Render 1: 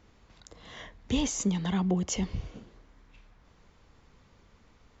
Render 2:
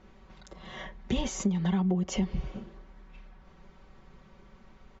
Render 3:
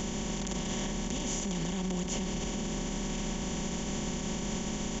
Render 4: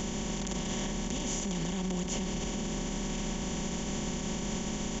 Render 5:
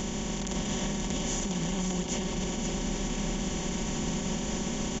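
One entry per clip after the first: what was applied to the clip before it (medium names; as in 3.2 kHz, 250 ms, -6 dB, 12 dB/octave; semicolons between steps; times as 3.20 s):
low-pass 2.1 kHz 6 dB/octave; comb 5.3 ms, depth 84%; compression 6:1, threshold -28 dBFS, peak gain reduction 10 dB; trim +3.5 dB
spectral levelling over time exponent 0.2; peak limiter -20 dBFS, peak gain reduction 9 dB; treble shelf 5.2 kHz +12 dB; trim -6 dB
no audible change
delay 531 ms -5.5 dB; trim +1.5 dB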